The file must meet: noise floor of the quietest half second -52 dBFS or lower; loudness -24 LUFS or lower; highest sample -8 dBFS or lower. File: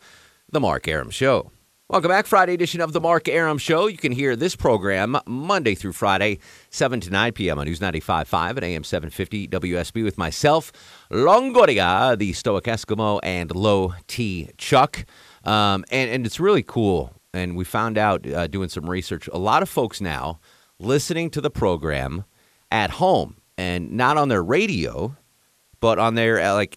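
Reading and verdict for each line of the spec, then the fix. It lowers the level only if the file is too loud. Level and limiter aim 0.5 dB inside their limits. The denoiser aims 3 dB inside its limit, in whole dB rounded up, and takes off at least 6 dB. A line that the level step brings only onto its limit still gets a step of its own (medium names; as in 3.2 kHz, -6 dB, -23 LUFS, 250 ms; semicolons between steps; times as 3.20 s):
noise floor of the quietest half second -62 dBFS: pass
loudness -21.0 LUFS: fail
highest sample -4.5 dBFS: fail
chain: trim -3.5 dB; peak limiter -8.5 dBFS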